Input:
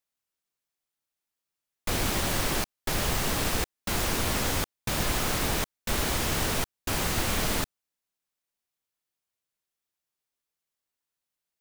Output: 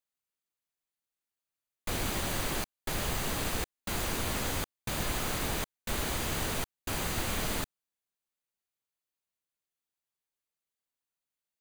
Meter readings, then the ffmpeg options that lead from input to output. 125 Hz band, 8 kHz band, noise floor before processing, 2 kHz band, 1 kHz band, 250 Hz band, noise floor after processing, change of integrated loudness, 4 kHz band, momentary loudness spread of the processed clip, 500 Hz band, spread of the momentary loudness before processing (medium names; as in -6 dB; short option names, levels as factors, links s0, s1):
-5.0 dB, -5.5 dB, under -85 dBFS, -5.0 dB, -5.0 dB, -5.0 dB, under -85 dBFS, -5.0 dB, -5.5 dB, 4 LU, -5.0 dB, 4 LU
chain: -af "bandreject=f=5400:w=9.5,volume=0.562"